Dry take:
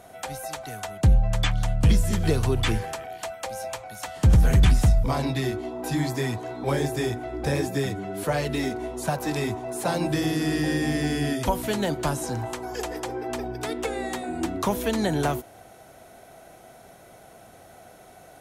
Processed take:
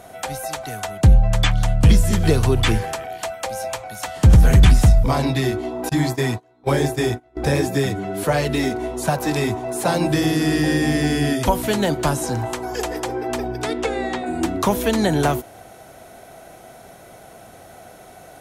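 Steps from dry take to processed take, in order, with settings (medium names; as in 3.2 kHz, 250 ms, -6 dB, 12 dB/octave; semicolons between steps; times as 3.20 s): 5.89–7.37 s: gate -28 dBFS, range -28 dB; 13.61–14.25 s: low-pass 10 kHz -> 3.8 kHz 12 dB/octave; trim +6 dB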